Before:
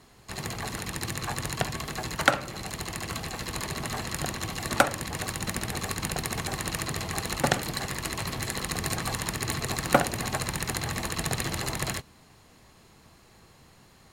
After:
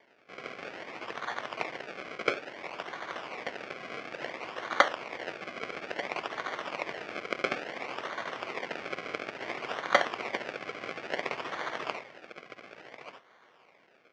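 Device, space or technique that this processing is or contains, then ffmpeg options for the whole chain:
circuit-bent sampling toy: -af "aecho=1:1:1188:0.282,acrusher=samples=33:mix=1:aa=0.000001:lfo=1:lforange=33:lforate=0.58,highpass=560,equalizer=f=840:t=q:w=4:g=-4,equalizer=f=2.2k:t=q:w=4:g=7,equalizer=f=3.9k:t=q:w=4:g=-7,lowpass=f=4.7k:w=0.5412,lowpass=f=4.7k:w=1.3066"

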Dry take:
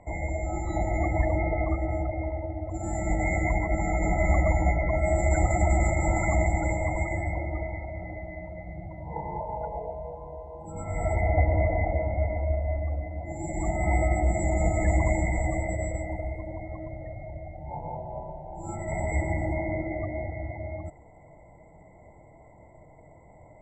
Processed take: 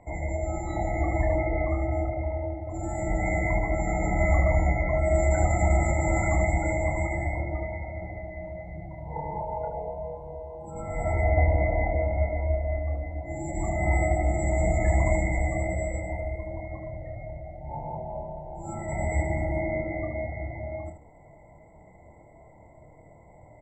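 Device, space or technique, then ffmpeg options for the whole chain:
slapback doubling: -filter_complex "[0:a]asplit=3[a][b][c];[b]adelay=27,volume=-5.5dB[d];[c]adelay=76,volume=-8dB[e];[a][d][e]amix=inputs=3:normalize=0,volume=-1.5dB"

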